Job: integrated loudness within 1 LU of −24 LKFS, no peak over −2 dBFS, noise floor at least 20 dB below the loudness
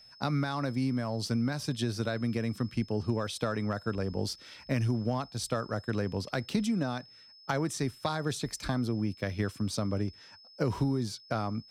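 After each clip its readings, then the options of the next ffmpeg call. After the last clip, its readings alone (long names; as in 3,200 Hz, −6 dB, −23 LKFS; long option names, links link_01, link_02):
interfering tone 5,200 Hz; level of the tone −53 dBFS; integrated loudness −32.5 LKFS; sample peak −15.5 dBFS; target loudness −24.0 LKFS
→ -af "bandreject=frequency=5200:width=30"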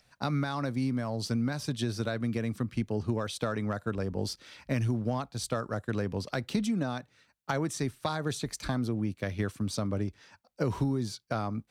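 interfering tone none found; integrated loudness −32.5 LKFS; sample peak −15.5 dBFS; target loudness −24.0 LKFS
→ -af "volume=8.5dB"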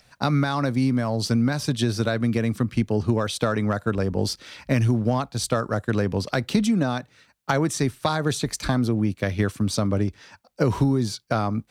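integrated loudness −24.0 LKFS; sample peak −7.0 dBFS; background noise floor −61 dBFS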